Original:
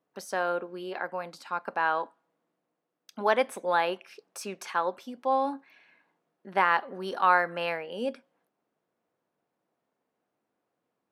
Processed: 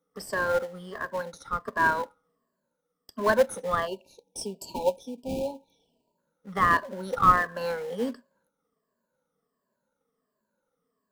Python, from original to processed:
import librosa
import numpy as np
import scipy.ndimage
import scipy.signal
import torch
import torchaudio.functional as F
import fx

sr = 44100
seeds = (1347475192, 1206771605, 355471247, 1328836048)

p1 = fx.spec_ripple(x, sr, per_octave=1.4, drift_hz=-1.4, depth_db=20)
p2 = fx.fixed_phaser(p1, sr, hz=500.0, stages=8)
p3 = fx.sample_hold(p2, sr, seeds[0], rate_hz=1300.0, jitter_pct=20)
p4 = p2 + (p3 * 10.0 ** (-12.0 / 20.0))
y = fx.spec_erase(p4, sr, start_s=3.87, length_s=2.31, low_hz=990.0, high_hz=2300.0)